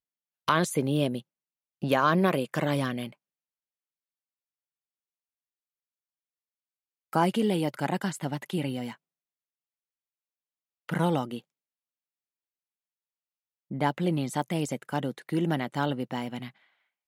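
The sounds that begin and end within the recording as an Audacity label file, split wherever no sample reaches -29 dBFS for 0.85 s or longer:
7.130000	8.900000	sound
10.890000	11.370000	sound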